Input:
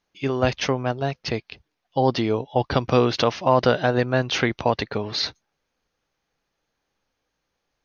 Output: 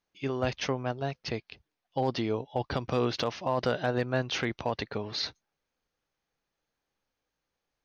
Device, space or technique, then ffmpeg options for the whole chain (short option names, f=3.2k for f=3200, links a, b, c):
limiter into clipper: -af "alimiter=limit=-9dB:level=0:latency=1:release=54,asoftclip=type=hard:threshold=-10dB,volume=-7.5dB"